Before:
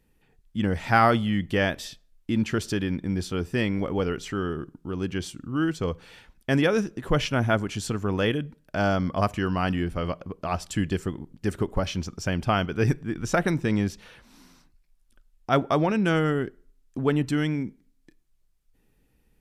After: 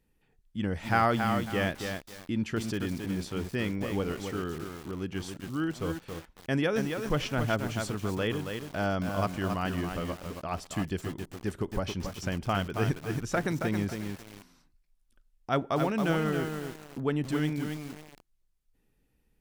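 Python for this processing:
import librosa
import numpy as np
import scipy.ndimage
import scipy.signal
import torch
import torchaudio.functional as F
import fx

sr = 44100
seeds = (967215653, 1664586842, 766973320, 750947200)

y = fx.echo_crushed(x, sr, ms=274, feedback_pct=35, bits=6, wet_db=-5.0)
y = y * 10.0 ** (-6.0 / 20.0)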